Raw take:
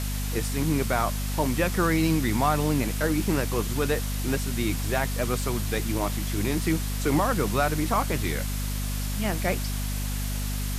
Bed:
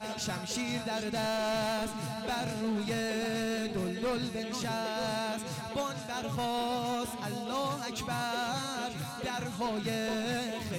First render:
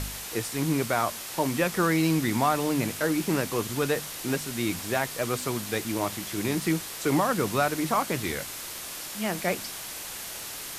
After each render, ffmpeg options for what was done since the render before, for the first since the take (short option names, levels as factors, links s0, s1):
-af "bandreject=f=50:t=h:w=4,bandreject=f=100:t=h:w=4,bandreject=f=150:t=h:w=4,bandreject=f=200:t=h:w=4,bandreject=f=250:t=h:w=4"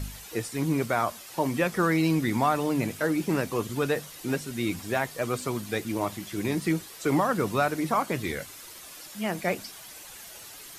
-af "afftdn=nr=10:nf=-38"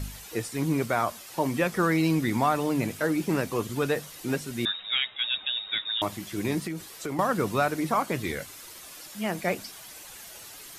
-filter_complex "[0:a]asettb=1/sr,asplit=3[s0][s1][s2];[s0]atrim=end=4.654[s3];[s1]atrim=start=4.65:end=6.02,asetpts=PTS-STARTPTS,afade=t=in:d=0.004:c=qsin,afade=t=out:st=1.366:d=0.004:c=qsin,lowpass=f=3300:t=q:w=0.5098,lowpass=f=3300:t=q:w=0.6013,lowpass=f=3300:t=q:w=0.9,lowpass=f=3300:t=q:w=2.563,afreqshift=-3900[s4];[s2]atrim=start=6.016[s5];[s3][s4]acrossfade=d=0.004:c1=hsin:c2=qsin[s6];[s6][s5]acrossfade=d=0.004:c1=qsin:c2=hsin,asettb=1/sr,asplit=3[s7][s8][s9];[s7]atrim=end=6.664[s10];[s8]atrim=start=6.66:end=7.19,asetpts=PTS-STARTPTS,afade=t=in:d=0.004:c=qsin,afade=t=out:st=0.526:d=0.004:c=qsin,acompressor=threshold=0.0355:ratio=6:attack=3.2:release=140:knee=1:detection=peak[s11];[s9]atrim=start=7.186[s12];[s10][s11]acrossfade=d=0.004:c1=hsin:c2=qsin[s13];[s13][s12]acrossfade=d=0.004:c1=qsin:c2=hsin"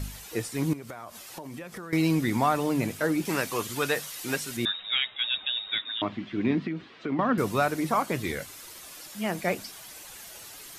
-filter_complex "[0:a]asettb=1/sr,asplit=3[s0][s1][s2];[s0]atrim=end=0.734[s3];[s1]atrim=start=0.73:end=1.93,asetpts=PTS-STARTPTS,afade=t=in:d=0.004:c=qsin,afade=t=out:st=1.196:d=0.004:c=qsin,acompressor=threshold=0.0158:ratio=10:attack=3.2:release=140:knee=1:detection=peak[s4];[s2]atrim=start=1.926[s5];[s3][s4]acrossfade=d=0.004:c1=hsin:c2=qsin[s6];[s6][s5]acrossfade=d=0.004:c1=qsin:c2=hsin,asettb=1/sr,asplit=3[s7][s8][s9];[s7]atrim=end=3.254[s10];[s8]atrim=start=3.25:end=4.57,asetpts=PTS-STARTPTS,afade=t=in:d=0.004:c=qsin,afade=t=out:st=1.316:d=0.004:c=qsin,tiltshelf=f=700:g=-6[s11];[s9]atrim=start=4.566[s12];[s10][s11]acrossfade=d=0.004:c1=hsin:c2=qsin[s13];[s13][s12]acrossfade=d=0.004:c1=qsin:c2=hsin,asettb=1/sr,asplit=3[s14][s15][s16];[s14]atrim=end=5.814[s17];[s15]atrim=start=5.81:end=7.38,asetpts=PTS-STARTPTS,afade=t=in:d=0.004:c=qsin,afade=t=out:st=1.566:d=0.004:c=qsin,highpass=100,equalizer=f=250:t=q:w=4:g=10,equalizer=f=540:t=q:w=4:g=-3,equalizer=f=850:t=q:w=4:g=-4,lowpass=f=3400:w=0.5412,lowpass=f=3400:w=1.3066[s18];[s16]atrim=start=7.376[s19];[s17][s18]acrossfade=d=0.004:c1=hsin:c2=qsin[s20];[s20][s19]acrossfade=d=0.004:c1=qsin:c2=hsin"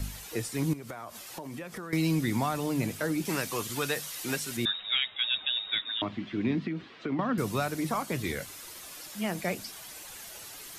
-filter_complex "[0:a]acrossover=split=210|3000[s0][s1][s2];[s1]acompressor=threshold=0.0224:ratio=2[s3];[s0][s3][s2]amix=inputs=3:normalize=0"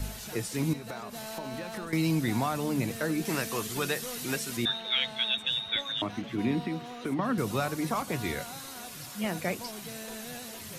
-filter_complex "[1:a]volume=0.316[s0];[0:a][s0]amix=inputs=2:normalize=0"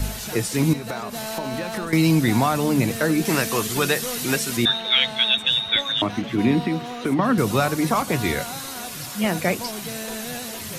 -af "volume=2.99"